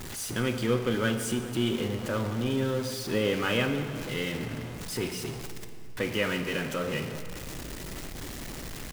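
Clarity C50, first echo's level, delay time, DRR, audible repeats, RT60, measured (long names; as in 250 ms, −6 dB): 8.0 dB, −20.5 dB, 404 ms, 7.0 dB, 1, 2.4 s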